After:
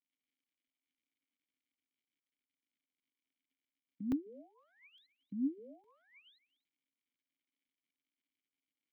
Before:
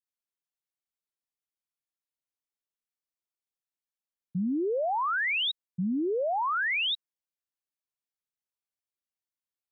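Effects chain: tilt shelf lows +3 dB, about 700 Hz; band-stop 840 Hz, Q 19; gate with hold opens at -23 dBFS; peaking EQ 340 Hz -12.5 dB 0.25 oct; crackle 150 per s -57 dBFS; speakerphone echo 280 ms, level -18 dB; speed mistake 44.1 kHz file played as 48 kHz; vowel filter i; crackling interface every 0.86 s, samples 128, zero, from 0.68 s; trim -2.5 dB

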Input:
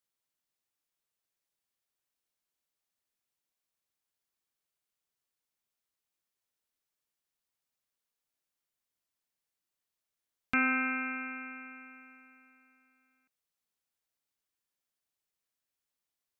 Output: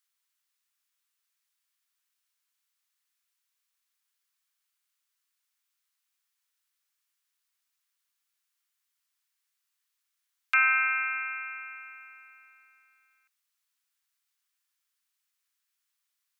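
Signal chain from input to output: high-pass 1.1 kHz 24 dB/octave; trim +7 dB

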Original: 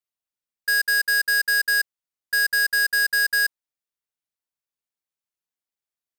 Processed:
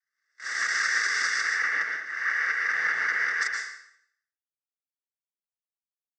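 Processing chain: reverse spectral sustain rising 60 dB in 1.17 s; high-pass 340 Hz 6 dB/octave; gate -34 dBFS, range -22 dB; 1.40–3.42 s: low-pass 2 kHz 12 dB/octave; harmonic-percussive split harmonic -17 dB; compression, threshold -35 dBFS, peak gain reduction 8.5 dB; waveshaping leveller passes 2; noise-vocoded speech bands 16; delay 142 ms -17 dB; plate-style reverb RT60 0.67 s, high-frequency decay 0.95×, pre-delay 105 ms, DRR 1.5 dB; trim +4 dB

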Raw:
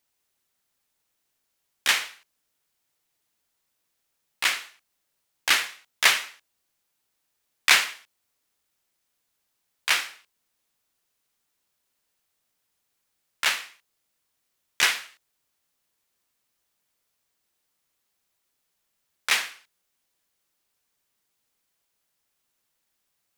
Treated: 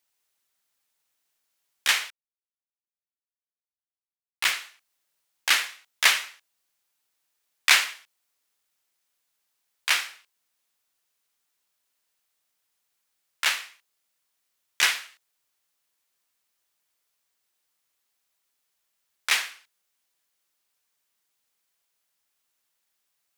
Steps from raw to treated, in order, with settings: bass shelf 460 Hz -9 dB; 2.10–4.51 s: small samples zeroed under -30 dBFS

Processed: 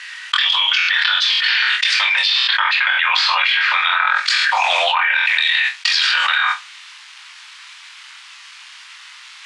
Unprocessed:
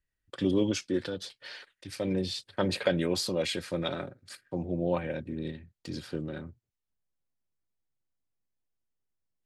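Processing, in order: median filter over 5 samples; steep high-pass 920 Hz 48 dB/octave; low-pass that closes with the level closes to 2.1 kHz, closed at -37.5 dBFS; steep low-pass 10 kHz 48 dB/octave; peaking EQ 2.8 kHz +14 dB 2.6 oct; on a send: flutter echo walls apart 4 m, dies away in 0.22 s; on the sum: level flattener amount 100%; trim +7.5 dB

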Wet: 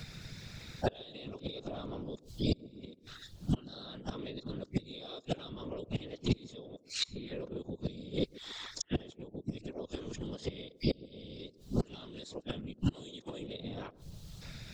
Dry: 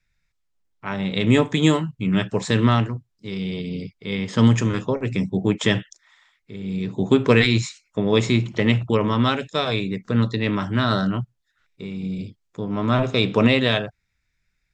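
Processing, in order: reverse the whole clip; graphic EQ 125/500/1000/2000/4000 Hz -8/+5/-4/-11/+10 dB; peak limiter -9.5 dBFS, peak gain reduction 7.5 dB; compression 8:1, threshold -24 dBFS, peak gain reduction 10 dB; inverted gate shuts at -24 dBFS, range -33 dB; whisper effect; on a send: band-passed feedback delay 139 ms, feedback 43%, band-pass 320 Hz, level -20 dB; on the sum: three bands compressed up and down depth 70%; trim +12.5 dB

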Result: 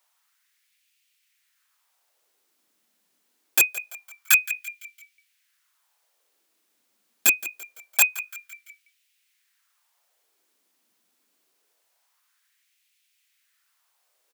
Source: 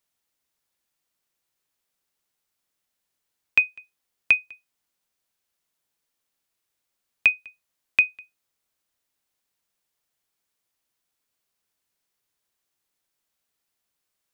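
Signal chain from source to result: integer overflow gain 19 dB; frequency-shifting echo 169 ms, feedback 49%, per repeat -52 Hz, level -17.5 dB; LFO high-pass sine 0.25 Hz 220–2500 Hz; trim +8.5 dB

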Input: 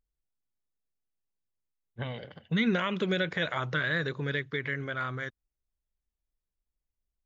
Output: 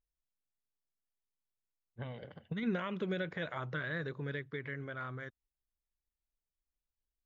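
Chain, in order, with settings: treble shelf 2.5 kHz -10.5 dB; 2.22–2.63 s: compressor with a negative ratio -29 dBFS, ratio -0.5; trim -6.5 dB

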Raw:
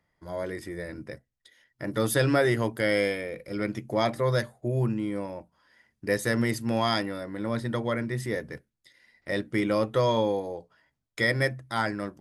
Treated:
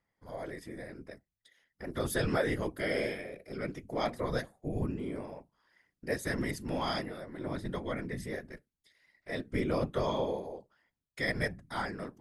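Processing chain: 9.47–9.91 s: bass shelf 140 Hz +12 dB; whisper effect; trim -7.5 dB

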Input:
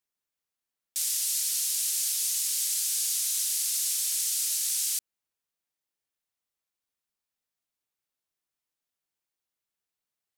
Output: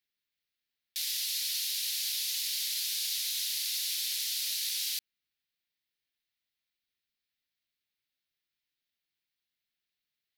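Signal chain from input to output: in parallel at -1.5 dB: peak limiter -23 dBFS, peak gain reduction 7 dB; on the sum: ten-band graphic EQ 500 Hz -5 dB, 1 kHz -11 dB, 2 kHz +6 dB, 4 kHz +9 dB, 8 kHz -12 dB; trim -5.5 dB

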